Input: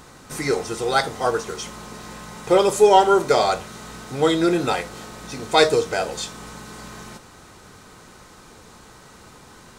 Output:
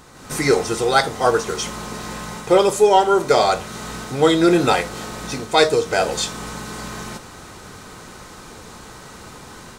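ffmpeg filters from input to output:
-af "dynaudnorm=f=130:g=3:m=8dB,volume=-1dB"

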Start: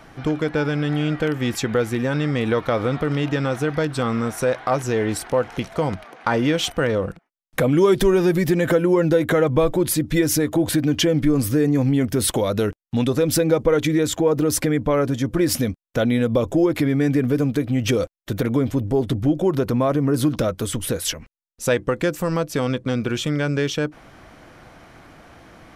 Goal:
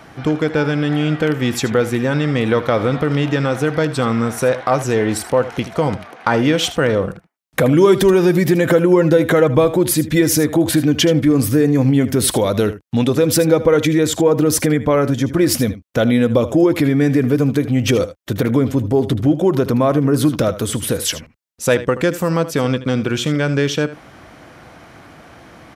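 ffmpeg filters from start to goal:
-filter_complex "[0:a]highpass=62,asplit=2[a][b];[b]aecho=0:1:78:0.188[c];[a][c]amix=inputs=2:normalize=0,volume=4.5dB"

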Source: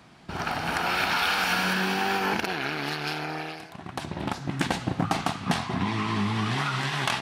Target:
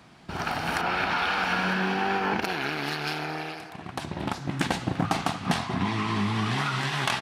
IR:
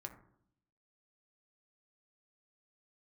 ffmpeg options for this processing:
-filter_complex "[0:a]asettb=1/sr,asplit=3[a][b][c];[a]atrim=end=0.814[d];[b]atrim=start=0.81:end=2.42,asetpts=PTS-STARTPTS,afade=t=in:d=0.004:c=qsin,afade=t=out:st=1.606:d=0.004:c=qsin,aemphasis=mode=reproduction:type=75fm[e];[c]atrim=start=2.416[f];[d][e]acrossfade=d=0.004:c1=hsin:c2=qsin[g];[g][f]acrossfade=d=0.004:c1=qsin:c2=hsin,asplit=2[h][i];[i]adelay=340,highpass=300,lowpass=3.4k,asoftclip=type=hard:threshold=-21dB,volume=-13dB[j];[h][j]amix=inputs=2:normalize=0"

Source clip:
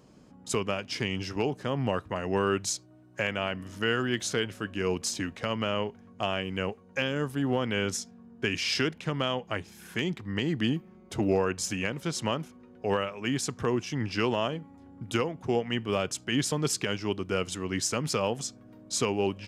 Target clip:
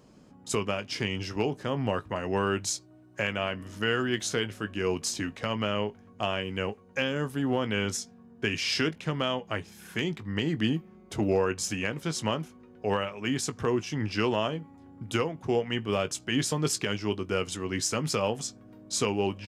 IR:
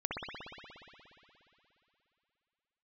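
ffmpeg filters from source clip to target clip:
-filter_complex "[0:a]asplit=2[a][b];[b]adelay=19,volume=-12dB[c];[a][c]amix=inputs=2:normalize=0"

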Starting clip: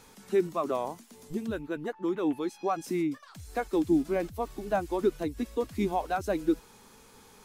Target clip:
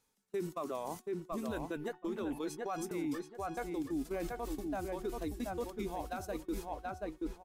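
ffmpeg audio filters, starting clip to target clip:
-filter_complex "[0:a]areverse,acompressor=threshold=-36dB:ratio=8,areverse,asubboost=boost=2:cutoff=78,agate=range=-32dB:threshold=-43dB:ratio=16:detection=peak,asplit=2[a][b];[b]adelay=729,lowpass=f=2.4k:p=1,volume=-6dB,asplit=2[c][d];[d]adelay=729,lowpass=f=2.4k:p=1,volume=0.23,asplit=2[e][f];[f]adelay=729,lowpass=f=2.4k:p=1,volume=0.23[g];[c][e][g]amix=inputs=3:normalize=0[h];[a][h]amix=inputs=2:normalize=0,alimiter=level_in=12.5dB:limit=-24dB:level=0:latency=1:release=181,volume=-12.5dB,highshelf=f=4.6k:g=7,bandreject=f=368.1:t=h:w=4,bandreject=f=736.2:t=h:w=4,bandreject=f=1.1043k:t=h:w=4,bandreject=f=1.4724k:t=h:w=4,bandreject=f=1.8405k:t=h:w=4,bandreject=f=2.2086k:t=h:w=4,bandreject=f=2.5767k:t=h:w=4,bandreject=f=2.9448k:t=h:w=4,bandreject=f=3.3129k:t=h:w=4,bandreject=f=3.681k:t=h:w=4,volume=7dB"

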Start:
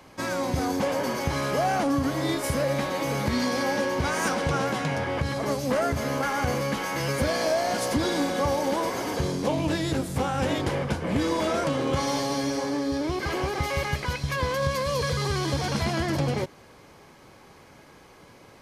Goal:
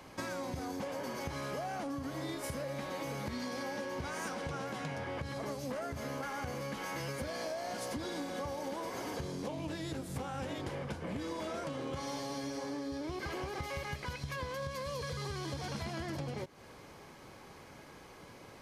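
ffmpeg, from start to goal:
-af "acompressor=threshold=-35dB:ratio=6,volume=-2dB"

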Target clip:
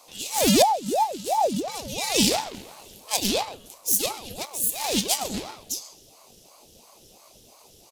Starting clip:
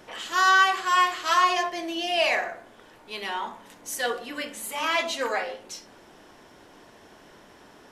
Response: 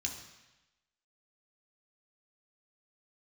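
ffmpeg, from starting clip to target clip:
-filter_complex "[0:a]asplit=2[a][b];[1:a]atrim=start_sample=2205[c];[b][c]afir=irnorm=-1:irlink=0,volume=-6.5dB[d];[a][d]amix=inputs=2:normalize=0,aeval=exprs='clip(val(0),-1,0.158)':c=same,asplit=3[e][f][g];[e]afade=t=out:st=2.53:d=0.02[h];[f]acontrast=87,afade=t=in:st=2.53:d=0.02,afade=t=out:st=3.41:d=0.02[i];[g]afade=t=in:st=3.41:d=0.02[j];[h][i][j]amix=inputs=3:normalize=0,asplit=2[k][l];[l]adelay=134,lowpass=f=2.1k:p=1,volume=-8dB,asplit=2[m][n];[n]adelay=134,lowpass=f=2.1k:p=1,volume=0.38,asplit=2[o][p];[p]adelay=134,lowpass=f=2.1k:p=1,volume=0.38,asplit=2[q][r];[r]adelay=134,lowpass=f=2.1k:p=1,volume=0.38[s];[k][m][o][q][s]amix=inputs=5:normalize=0,aeval=exprs='0.398*(cos(1*acos(clip(val(0)/0.398,-1,1)))-cos(1*PI/2))+0.0398*(cos(3*acos(clip(val(0)/0.398,-1,1)))-cos(3*PI/2))+0.126*(cos(4*acos(clip(val(0)/0.398,-1,1)))-cos(4*PI/2))':c=same,aemphasis=mode=production:type=75kf,asettb=1/sr,asplit=3[t][u][v];[t]atrim=end=0.624[w];[u]atrim=start=0.62:end=1.68,asetpts=PTS-STARTPTS,afade=t=in:d=0.004:c=qsin,afade=t=out:st=1.056:d=0.004:c=qsin,acrossover=split=140[x][y];[y]acompressor=threshold=-29dB:ratio=6[z];[x][z]amix=inputs=2:normalize=0[aa];[v]atrim=start=1.676[ab];[w][aa]acrossfade=d=0.004:c1=hsin:c2=qsin[ac];[ac][ab]acrossfade=d=0.004:c1=qsin:c2=hsin,asettb=1/sr,asplit=3[ad][ae][af];[ad]atrim=end=4.454[ag];[ae]atrim=start=4.45:end=5.07,asetpts=PTS-STARTPTS,afade=t=in:d=0.004:c=qsin,afade=t=out:st=0.616:d=0.004:c=qsin,aeval=exprs='sgn(val(0))*max(abs(val(0))-0.0112,0)':c=same[ah];[af]atrim=start=5.066[ai];[ag][ah]acrossfade=d=0.004:c1=hsin:c2=qsin[aj];[aj][ai]acrossfade=d=0.004:c1=qsin:c2=hsin,firequalizer=gain_entry='entry(120,0);entry(900,-28);entry(2200,-21);entry(3200,-8);entry(9600,-5)':delay=0.05:min_phase=1,aeval=exprs='val(0)*sin(2*PI*540*n/s+540*0.65/2.9*sin(2*PI*2.9*n/s))':c=same,volume=6.5dB"

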